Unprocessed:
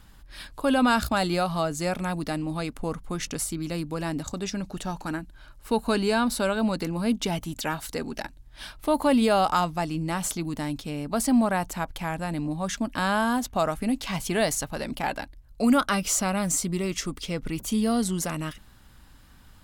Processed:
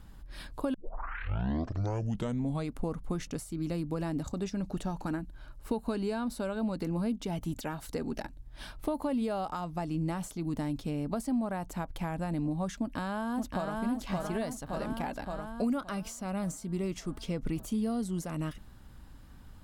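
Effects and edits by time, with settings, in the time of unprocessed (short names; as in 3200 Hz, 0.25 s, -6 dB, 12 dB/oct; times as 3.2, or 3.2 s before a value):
0.74 tape start 1.98 s
12.78–13.81 echo throw 0.57 s, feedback 55%, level -2.5 dB
whole clip: high shelf 2400 Hz +8.5 dB; compressor, threshold -29 dBFS; tilt shelf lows +8.5 dB, about 1400 Hz; gain -6.5 dB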